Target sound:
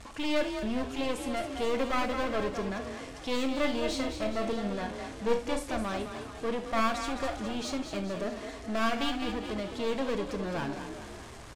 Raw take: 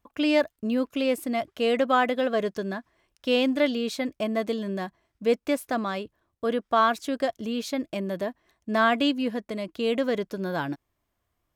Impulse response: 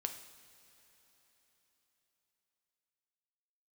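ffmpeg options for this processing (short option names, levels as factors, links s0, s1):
-filter_complex "[0:a]aeval=exprs='val(0)+0.5*0.0158*sgn(val(0))':c=same,lowpass=f=9200:w=0.5412,lowpass=f=9200:w=1.3066,aeval=exprs='clip(val(0),-1,0.0316)':c=same,asettb=1/sr,asplit=3[s0][s1][s2];[s0]atrim=end=3.614[s3];[s1]atrim=start=3.61:end=5.64,asetpts=PTS-STARTPTS,afade=t=in:d=0.004:c=qsin,afade=t=out:st=2.026:d=0.004:c=qsin,asplit=2[s4][s5];[s5]adelay=34,volume=0.473[s6];[s4][s6]amix=inputs=2:normalize=0,atrim=end_sample=89523[s7];[s2]atrim=start=5.636[s8];[s3][s7]acrossfade=d=0.004:c1=hsin:c2=qsin[s9];[s9][s8]acrossfade=d=0.004:c1=qsin:c2=hsin,asplit=7[s10][s11][s12][s13][s14][s15][s16];[s11]adelay=211,afreqshift=34,volume=0.398[s17];[s12]adelay=422,afreqshift=68,volume=0.211[s18];[s13]adelay=633,afreqshift=102,volume=0.112[s19];[s14]adelay=844,afreqshift=136,volume=0.0596[s20];[s15]adelay=1055,afreqshift=170,volume=0.0313[s21];[s16]adelay=1266,afreqshift=204,volume=0.0166[s22];[s10][s17][s18][s19][s20][s21][s22]amix=inputs=7:normalize=0[s23];[1:a]atrim=start_sample=2205,atrim=end_sample=3969[s24];[s23][s24]afir=irnorm=-1:irlink=0,volume=0.668"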